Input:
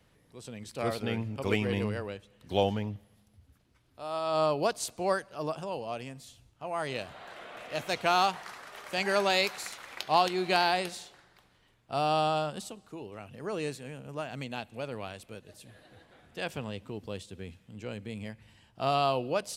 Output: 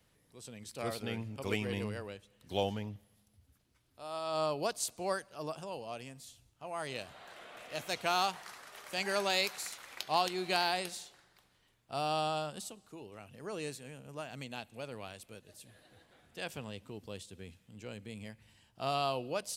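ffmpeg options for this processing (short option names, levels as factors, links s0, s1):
-af "highshelf=f=4400:g=8.5,volume=0.473"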